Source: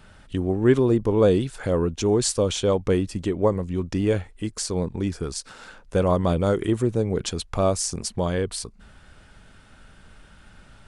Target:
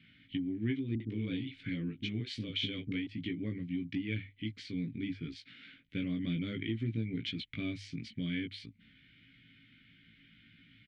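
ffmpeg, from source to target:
ffmpeg -i in.wav -filter_complex "[0:a]asplit=3[link_01][link_02][link_03];[link_01]bandpass=frequency=270:width_type=q:width=8,volume=0dB[link_04];[link_02]bandpass=frequency=2290:width_type=q:width=8,volume=-6dB[link_05];[link_03]bandpass=frequency=3010:width_type=q:width=8,volume=-9dB[link_06];[link_04][link_05][link_06]amix=inputs=3:normalize=0,bass=frequency=250:gain=5,treble=frequency=4000:gain=-10,bandreject=frequency=50:width_type=h:width=6,bandreject=frequency=100:width_type=h:width=6,asplit=2[link_07][link_08];[link_08]adelay=18,volume=-4dB[link_09];[link_07][link_09]amix=inputs=2:normalize=0,acompressor=threshold=-28dB:ratio=6,equalizer=frequency=125:width_type=o:width=1:gain=10,equalizer=frequency=250:width_type=o:width=1:gain=-5,equalizer=frequency=500:width_type=o:width=1:gain=-7,equalizer=frequency=1000:width_type=o:width=1:gain=-4,equalizer=frequency=2000:width_type=o:width=1:gain=8,equalizer=frequency=4000:width_type=o:width=1:gain=11,equalizer=frequency=8000:width_type=o:width=1:gain=-5,asettb=1/sr,asplit=3[link_10][link_11][link_12];[link_10]atrim=end=0.954[link_13];[link_11]atrim=start=0.95:end=3.07,asetpts=PTS-STARTPTS,afade=type=in:duration=0.004:curve=qsin,afade=type=out:start_time=2.116:duration=0.004:curve=qsin,acrossover=split=370[link_14][link_15];[link_15]adelay=50[link_16];[link_14][link_16]amix=inputs=2:normalize=0,atrim=end_sample=93492[link_17];[link_12]atrim=start=3.066[link_18];[link_13][link_17]acrossfade=duration=0.004:curve1=hsin:curve2=qsin[link_19];[link_19][link_18]acrossfade=duration=0.004:curve1=qsin:curve2=hsin" out.wav

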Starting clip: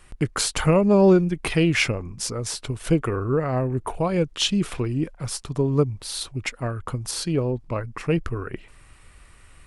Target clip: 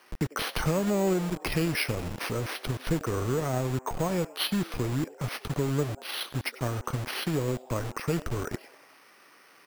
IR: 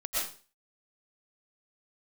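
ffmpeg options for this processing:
-filter_complex "[0:a]highshelf=frequency=5000:gain=-7.5,acompressor=threshold=-30dB:ratio=2.5,asplit=2[link_01][link_02];[1:a]atrim=start_sample=2205,atrim=end_sample=4410[link_03];[link_02][link_03]afir=irnorm=-1:irlink=0,volume=-13.5dB[link_04];[link_01][link_04]amix=inputs=2:normalize=0,acrusher=samples=6:mix=1:aa=0.000001,asplit=6[link_05][link_06][link_07][link_08][link_09][link_10];[link_06]adelay=96,afreqshift=130,volume=-20dB[link_11];[link_07]adelay=192,afreqshift=260,volume=-24.6dB[link_12];[link_08]adelay=288,afreqshift=390,volume=-29.2dB[link_13];[link_09]adelay=384,afreqshift=520,volume=-33.7dB[link_14];[link_10]adelay=480,afreqshift=650,volume=-38.3dB[link_15];[link_05][link_11][link_12][link_13][link_14][link_15]amix=inputs=6:normalize=0,acrossover=split=260|3300[link_16][link_17][link_18];[link_16]acrusher=bits=5:mix=0:aa=0.000001[link_19];[link_19][link_17][link_18]amix=inputs=3:normalize=0"

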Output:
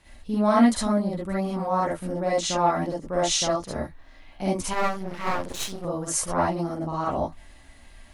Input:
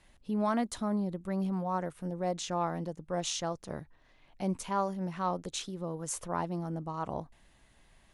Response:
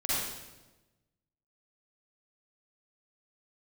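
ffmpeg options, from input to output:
-filter_complex "[1:a]atrim=start_sample=2205,atrim=end_sample=3528[link_01];[0:a][link_01]afir=irnorm=-1:irlink=0,asettb=1/sr,asplit=3[link_02][link_03][link_04];[link_02]atrim=end=4.734[link_05];[link_03]atrim=start=4.73:end=5.85,asetpts=PTS-STARTPTS,afade=type=in:duration=0.004:curve=qsin,afade=type=out:start_time=1.116:duration=0.004:curve=qsin,aeval=exprs='max(val(0),0)':channel_layout=same[link_06];[link_04]atrim=start=5.846[link_07];[link_05][link_06]acrossfade=duration=0.004:curve1=hsin:curve2=qsin[link_08];[link_08][link_07]acrossfade=duration=0.004:curve1=qsin:curve2=hsin,volume=6dB"

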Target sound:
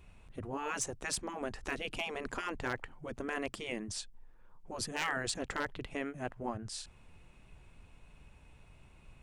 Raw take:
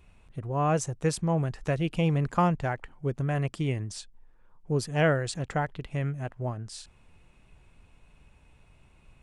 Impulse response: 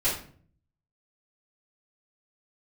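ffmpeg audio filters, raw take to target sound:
-af "afftfilt=real='re*lt(hypot(re,im),0.141)':imag='im*lt(hypot(re,im),0.141)':win_size=1024:overlap=0.75,aeval=exprs='0.0631*(abs(mod(val(0)/0.0631+3,4)-2)-1)':channel_layout=same"

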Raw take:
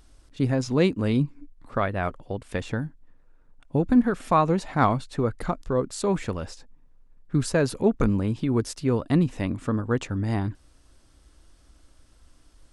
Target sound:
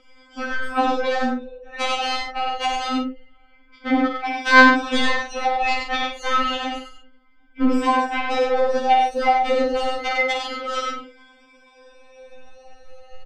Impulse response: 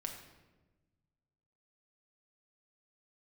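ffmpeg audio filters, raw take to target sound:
-filter_complex "[0:a]afftfilt=real='re*pow(10,20/40*sin(2*PI*(1.7*log(max(b,1)*sr/1024/100)/log(2)-(0.29)*(pts-256)/sr)))':imag='im*pow(10,20/40*sin(2*PI*(1.7*log(max(b,1)*sr/1024/100)/log(2)-(0.29)*(pts-256)/sr)))':win_size=1024:overlap=0.75,lowpass=frequency=3500:width=0.5412,lowpass=frequency=3500:width=1.3066,bandreject=frequency=60:width_type=h:width=6,bandreject=frequency=120:width_type=h:width=6,bandreject=frequency=180:width_type=h:width=6,bandreject=frequency=240:width_type=h:width=6,bandreject=frequency=300:width_type=h:width=6,bandreject=frequency=360:width_type=h:width=6,bandreject=frequency=420:width_type=h:width=6,deesser=1,acrossover=split=160 2100:gain=0.2 1 0.224[link_01][link_02][link_03];[link_01][link_02][link_03]amix=inputs=3:normalize=0,aecho=1:1:4.1:0.43,acompressor=threshold=-23dB:ratio=6,aeval=exprs='0.2*sin(PI/2*2.82*val(0)/0.2)':channel_layout=same,asetrate=76340,aresample=44100,atempo=0.577676,asplit=2[link_04][link_05];[link_05]aecho=0:1:52|94|135:0.562|0.631|0.299[link_06];[link_04][link_06]amix=inputs=2:normalize=0,asetrate=42336,aresample=44100,afftfilt=real='re*3.46*eq(mod(b,12),0)':imag='im*3.46*eq(mod(b,12),0)':win_size=2048:overlap=0.75"

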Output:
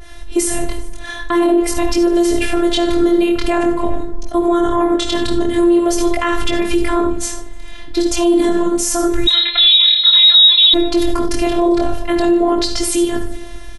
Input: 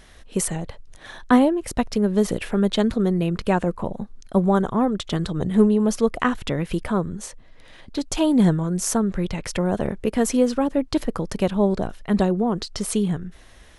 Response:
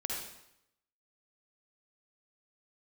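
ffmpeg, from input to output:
-filter_complex "[0:a]asplit=2[link_01][link_02];[link_02]equalizer=frequency=300:width_type=o:width=0.34:gain=4[link_03];[1:a]atrim=start_sample=2205,atrim=end_sample=4410,lowshelf=frequency=190:gain=11.5[link_04];[link_03][link_04]afir=irnorm=-1:irlink=0,volume=-4dB[link_05];[link_01][link_05]amix=inputs=2:normalize=0,flanger=delay=18.5:depth=7.8:speed=0.47,bandreject=frequency=60:width_type=h:width=6,bandreject=frequency=120:width_type=h:width=6,bandreject=frequency=180:width_type=h:width=6,bandreject=frequency=240:width_type=h:width=6,asplit=2[link_06][link_07];[link_07]asplit=3[link_08][link_09][link_10];[link_08]adelay=150,afreqshift=140,volume=-23dB[link_11];[link_09]adelay=300,afreqshift=280,volume=-31dB[link_12];[link_10]adelay=450,afreqshift=420,volume=-38.9dB[link_13];[link_11][link_12][link_13]amix=inputs=3:normalize=0[link_14];[link_06][link_14]amix=inputs=2:normalize=0,asettb=1/sr,asplit=3[link_15][link_16][link_17];[link_15]atrim=end=9.274[link_18];[link_16]atrim=start=9.27:end=10.74,asetpts=PTS-STARTPTS,afade=type=in:duration=0.004:curve=qsin,afade=type=out:start_time=1.466:duration=0.004:curve=qsin,lowpass=frequency=3400:width_type=q:width=0.5098,lowpass=frequency=3400:width_type=q:width=0.6013,lowpass=frequency=3400:width_type=q:width=0.9,lowpass=frequency=3400:width_type=q:width=2.563,afreqshift=-4000[link_19];[link_17]atrim=start=10.736[link_20];[link_18][link_19]acrossfade=duration=0.004:curve1=hsin:curve2=qsin[link_21];[link_21][link_20]acrossfade=duration=0.004:curve1=qsin:curve2=hsin,asplit=2[link_22][link_23];[link_23]adelay=396.5,volume=-24dB,highshelf=frequency=4000:gain=-8.92[link_24];[link_22][link_24]amix=inputs=2:normalize=0,afftfilt=real='hypot(re,im)*cos(PI*b)':imag='0':win_size=512:overlap=0.75,alimiter=level_in=16.5dB:limit=-1dB:release=50:level=0:latency=1,adynamicequalizer=threshold=0.0631:dfrequency=1600:dqfactor=0.7:tfrequency=1600:tqfactor=0.7:attack=5:release=100:ratio=0.375:range=2:mode=boostabove:tftype=highshelf,volume=-4dB"

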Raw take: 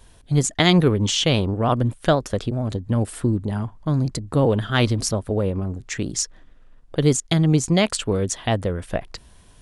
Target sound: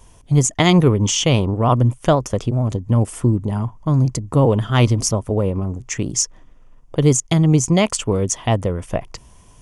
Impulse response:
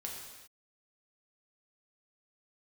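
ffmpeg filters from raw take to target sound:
-af "equalizer=frequency=125:width_type=o:width=0.33:gain=5,equalizer=frequency=1000:width_type=o:width=0.33:gain=5,equalizer=frequency=1600:width_type=o:width=0.33:gain=-8,equalizer=frequency=4000:width_type=o:width=0.33:gain=-11,equalizer=frequency=6300:width_type=o:width=0.33:gain=6,volume=2.5dB"

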